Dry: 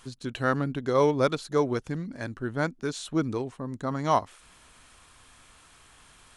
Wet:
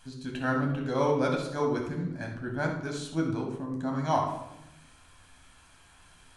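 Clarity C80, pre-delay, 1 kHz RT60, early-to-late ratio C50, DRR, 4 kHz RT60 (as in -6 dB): 8.0 dB, 12 ms, 0.80 s, 4.5 dB, 0.0 dB, 0.55 s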